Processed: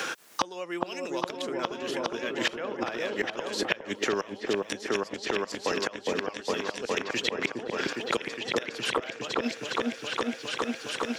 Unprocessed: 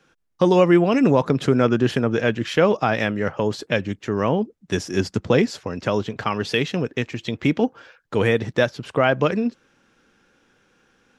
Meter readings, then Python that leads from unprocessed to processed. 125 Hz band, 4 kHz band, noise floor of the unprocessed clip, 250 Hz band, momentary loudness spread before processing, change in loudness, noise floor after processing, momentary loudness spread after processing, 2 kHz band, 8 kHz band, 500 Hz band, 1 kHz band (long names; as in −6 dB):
−22.5 dB, −0.5 dB, −66 dBFS, −13.0 dB, 9 LU, −10.0 dB, −46 dBFS, 3 LU, −4.5 dB, +1.5 dB, −10.5 dB, −6.5 dB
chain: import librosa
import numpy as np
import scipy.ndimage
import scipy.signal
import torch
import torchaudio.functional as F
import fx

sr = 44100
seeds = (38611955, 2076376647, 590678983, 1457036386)

p1 = scipy.signal.sosfilt(scipy.signal.butter(2, 400.0, 'highpass', fs=sr, output='sos'), x)
p2 = fx.high_shelf(p1, sr, hz=2700.0, db=11.0)
p3 = fx.gate_flip(p2, sr, shuts_db=-15.0, range_db=-27)
p4 = p3 + fx.echo_opening(p3, sr, ms=411, hz=750, octaves=1, feedback_pct=70, wet_db=0, dry=0)
p5 = fx.band_squash(p4, sr, depth_pct=100)
y = F.gain(torch.from_numpy(p5), 3.0).numpy()